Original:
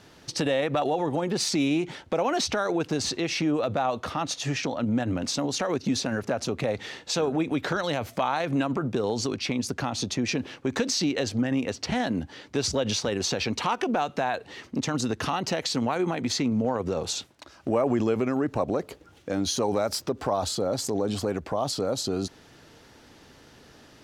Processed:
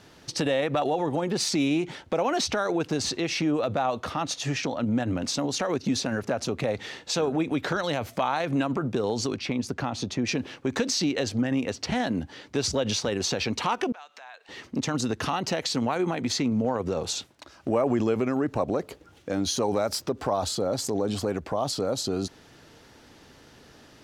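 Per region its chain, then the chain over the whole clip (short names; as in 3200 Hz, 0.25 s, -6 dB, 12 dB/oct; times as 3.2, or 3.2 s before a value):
9.37–10.27 high shelf 4100 Hz -8 dB + mismatched tape noise reduction encoder only
13.92–14.49 bell 11000 Hz -12.5 dB 0.33 oct + compressor 2.5:1, threshold -41 dBFS + HPF 1100 Hz
whole clip: dry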